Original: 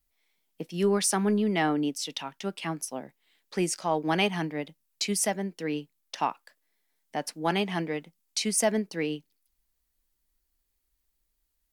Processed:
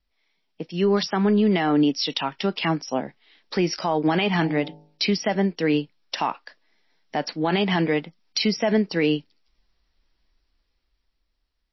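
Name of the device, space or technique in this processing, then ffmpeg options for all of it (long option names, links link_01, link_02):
low-bitrate web radio: -filter_complex "[0:a]asettb=1/sr,asplit=3[link_01][link_02][link_03];[link_01]atrim=end=4.374[link_04];[link_02]atrim=start=4.37:end=5.07,asetpts=PTS-STARTPTS,afade=type=in:duration=0.004:curve=qsin,afade=type=out:start_time=0.696:duration=0.004:curve=qsin,bandreject=frequency=51.89:width_type=h:width=4,bandreject=frequency=103.78:width_type=h:width=4,bandreject=frequency=155.67:width_type=h:width=4,bandreject=frequency=207.56:width_type=h:width=4,bandreject=frequency=259.45:width_type=h:width=4,bandreject=frequency=311.34:width_type=h:width=4,bandreject=frequency=363.23:width_type=h:width=4,bandreject=frequency=415.12:width_type=h:width=4,bandreject=frequency=467.01:width_type=h:width=4,bandreject=frequency=518.9:width_type=h:width=4,bandreject=frequency=570.79:width_type=h:width=4,bandreject=frequency=622.68:width_type=h:width=4,bandreject=frequency=674.57:width_type=h:width=4,bandreject=frequency=726.46:width_type=h:width=4,bandreject=frequency=778.35:width_type=h:width=4,bandreject=frequency=830.24:width_type=h:width=4,bandreject=frequency=882.13:width_type=h:width=4[link_05];[link_03]atrim=start=5.066[link_06];[link_04][link_05]acrossfade=duration=0.004:curve1=hsin:curve2=qsin[link_07];[link_07][link_06]acrossfade=duration=0.004:curve1=qsin:curve2=hsin,dynaudnorm=framelen=320:gausssize=9:maxgain=8dB,alimiter=limit=-16dB:level=0:latency=1:release=48,volume=4dB" -ar 16000 -c:a libmp3lame -b:a 24k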